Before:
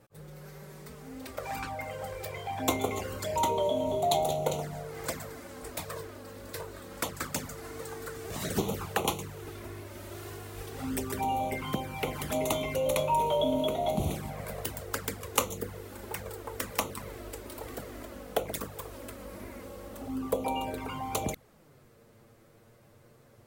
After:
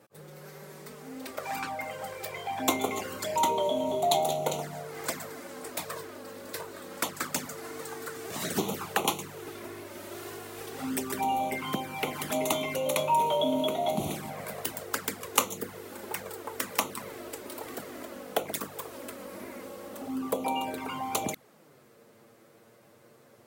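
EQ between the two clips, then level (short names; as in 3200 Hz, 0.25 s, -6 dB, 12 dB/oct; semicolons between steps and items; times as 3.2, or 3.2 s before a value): HPF 200 Hz 12 dB/oct; dynamic EQ 500 Hz, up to -5 dB, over -45 dBFS, Q 2.2; +3.0 dB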